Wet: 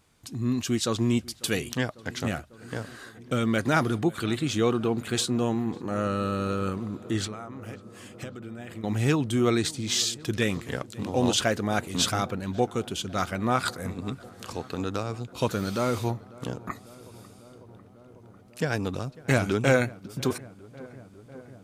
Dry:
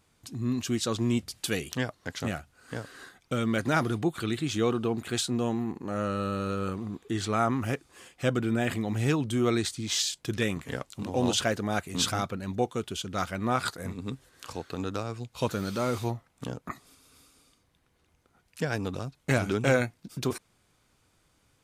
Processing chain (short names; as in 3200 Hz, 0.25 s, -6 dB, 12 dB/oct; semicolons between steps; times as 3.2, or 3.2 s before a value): 7.26–8.84 compressor 20:1, threshold -38 dBFS, peak gain reduction 19 dB; on a send: darkening echo 0.547 s, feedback 83%, low-pass 1900 Hz, level -21 dB; on the sum: gain +2.5 dB